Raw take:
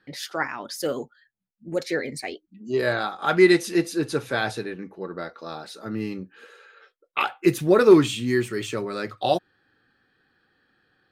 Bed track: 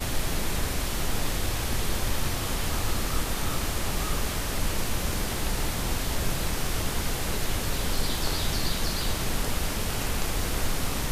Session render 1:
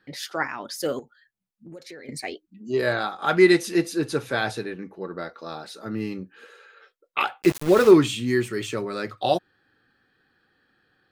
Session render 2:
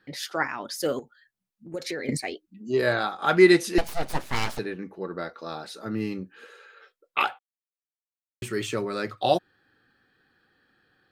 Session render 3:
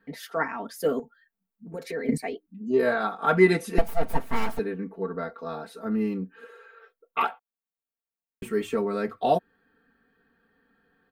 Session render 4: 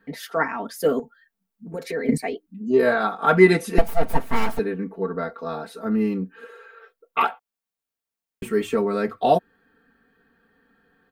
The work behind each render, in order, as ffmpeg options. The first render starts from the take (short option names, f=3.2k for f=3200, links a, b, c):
-filter_complex "[0:a]asettb=1/sr,asplit=3[a][b][c];[a]atrim=end=0.994[d];[b]atrim=start=0.99:end=2.09,asetpts=PTS-STARTPTS,afade=t=in:d=0.004:c=qsin,afade=t=out:st=1.096:d=0.004:c=qsin,acompressor=threshold=-39dB:ratio=6:attack=3.2:release=140:knee=1:detection=peak[e];[c]atrim=start=2.086[f];[d][e]acrossfade=d=0.004:c1=hsin:c2=qsin[g];[g][f]acrossfade=d=0.004:c1=qsin:c2=hsin,asettb=1/sr,asplit=3[h][i][j];[h]atrim=end=7.424[k];[i]atrim=start=7.42:end=7.91,asetpts=PTS-STARTPTS,afade=t=in:d=0.004:c=qsin,afade=t=out:st=0.486:d=0.004:c=qsin,aeval=exprs='val(0)*gte(abs(val(0)),0.0501)':c=same[l];[j]atrim=start=7.906[m];[k][l]acrossfade=d=0.004:c1=hsin:c2=qsin[n];[n][m]acrossfade=d=0.004:c1=qsin:c2=hsin"
-filter_complex "[0:a]asettb=1/sr,asplit=3[a][b][c];[a]atrim=end=3.784[d];[b]atrim=start=3.78:end=4.59,asetpts=PTS-STARTPTS,afade=t=in:d=0.004:c=qsin,afade=t=out:st=0.806:d=0.004:c=qsin,aeval=exprs='abs(val(0))':c=same[e];[c]atrim=start=4.586[f];[d][e]acrossfade=d=0.004:c1=hsin:c2=qsin[g];[g][f]acrossfade=d=0.004:c1=qsin:c2=hsin,asplit=5[h][i][j][k][l];[h]atrim=end=1.742[m];[i]atrim=start=1.738:end=2.172,asetpts=PTS-STARTPTS,volume=9.5dB[n];[j]atrim=start=2.168:end=7.39,asetpts=PTS-STARTPTS,afade=t=out:st=5.218:d=0.004:c=hsin[o];[k]atrim=start=7.39:end=8.42,asetpts=PTS-STARTPTS,volume=0[p];[l]atrim=start=8.42,asetpts=PTS-STARTPTS,afade=t=in:d=0.004:c=hsin[q];[m][n]acrossfade=d=0.004:c1=hsin:c2=hsin[r];[o][p][q]concat=n=3:v=0:a=1[s];[r][s]acrossfade=d=0.004:c1=hsin:c2=hsin"
-af "equalizer=f=5.1k:t=o:w=2.3:g=-14.5,aecho=1:1:4.4:0.97"
-af "volume=4.5dB"